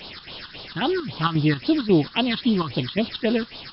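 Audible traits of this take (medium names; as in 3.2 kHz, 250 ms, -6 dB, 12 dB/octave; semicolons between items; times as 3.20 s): a quantiser's noise floor 6-bit, dither triangular; phasing stages 6, 3.7 Hz, lowest notch 570–2000 Hz; chopped level 3.7 Hz, depth 60%, duty 70%; MP3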